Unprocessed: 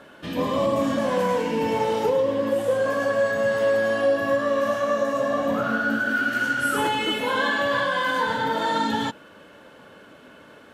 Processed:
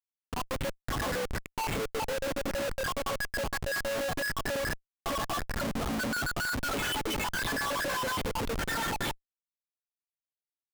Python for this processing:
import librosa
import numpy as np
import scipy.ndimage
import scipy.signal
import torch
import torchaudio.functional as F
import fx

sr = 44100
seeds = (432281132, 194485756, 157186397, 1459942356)

y = fx.spec_dropout(x, sr, seeds[0], share_pct=66)
y = fx.schmitt(y, sr, flips_db=-35.0)
y = F.gain(torch.from_numpy(y), -2.5).numpy()